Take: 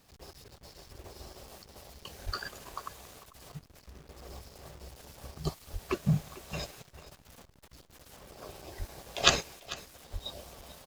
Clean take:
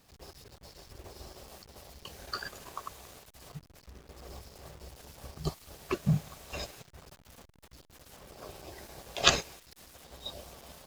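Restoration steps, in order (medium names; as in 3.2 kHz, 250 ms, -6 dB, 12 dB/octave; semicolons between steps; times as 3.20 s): de-plosive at 2.25/5.72/8.78/10.12 s; inverse comb 445 ms -18 dB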